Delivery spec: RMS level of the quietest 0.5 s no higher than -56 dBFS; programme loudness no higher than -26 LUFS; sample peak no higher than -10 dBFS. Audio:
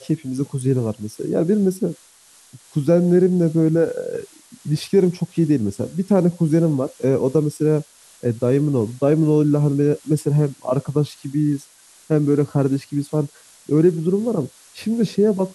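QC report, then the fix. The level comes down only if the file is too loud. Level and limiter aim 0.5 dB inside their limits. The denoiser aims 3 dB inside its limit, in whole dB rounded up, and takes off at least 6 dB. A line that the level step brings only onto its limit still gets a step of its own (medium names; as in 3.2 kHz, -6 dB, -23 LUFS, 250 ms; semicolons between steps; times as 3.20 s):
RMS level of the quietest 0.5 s -51 dBFS: fail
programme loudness -20.0 LUFS: fail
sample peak -5.0 dBFS: fail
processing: trim -6.5 dB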